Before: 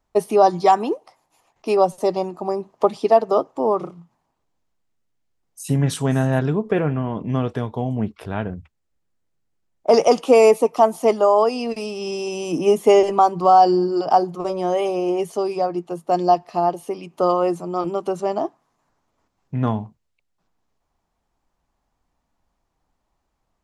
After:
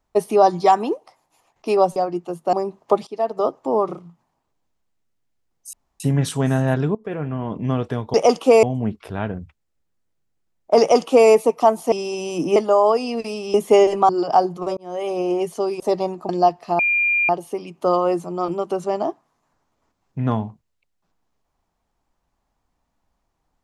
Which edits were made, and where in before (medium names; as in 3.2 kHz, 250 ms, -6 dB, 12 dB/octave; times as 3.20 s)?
1.96–2.45 s: swap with 15.58–16.15 s
2.99–3.49 s: fade in, from -18 dB
5.65 s: insert room tone 0.27 s
6.60–7.18 s: fade in, from -17.5 dB
9.96–10.45 s: copy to 7.79 s
12.06–12.70 s: move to 11.08 s
13.25–13.87 s: delete
14.55–14.98 s: fade in
16.65 s: add tone 2.4 kHz -15.5 dBFS 0.50 s